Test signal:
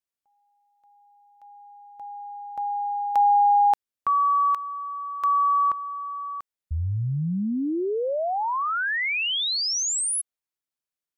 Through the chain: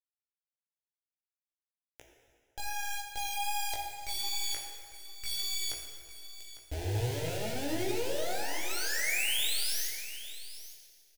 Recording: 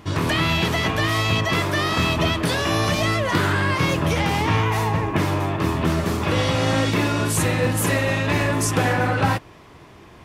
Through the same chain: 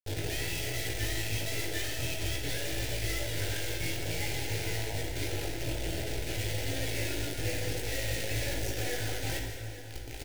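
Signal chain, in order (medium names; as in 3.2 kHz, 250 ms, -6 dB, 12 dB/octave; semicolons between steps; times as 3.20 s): RIAA curve playback; reverb removal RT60 1.1 s; FFT filter 930 Hz 0 dB, 2.1 kHz +13 dB, 11 kHz -2 dB; reverse; compression 5:1, threshold -28 dBFS; reverse; Chebyshev shaper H 3 -28 dB, 4 -17 dB, 6 -43 dB, 8 -22 dB, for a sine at -18.5 dBFS; bit crusher 5-bit; chorus 2.5 Hz, delay 17 ms, depth 2.3 ms; static phaser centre 470 Hz, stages 4; on a send: delay 852 ms -14.5 dB; on the sum: plate-style reverb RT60 2.2 s, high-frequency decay 0.75×, DRR 1 dB; trim -1 dB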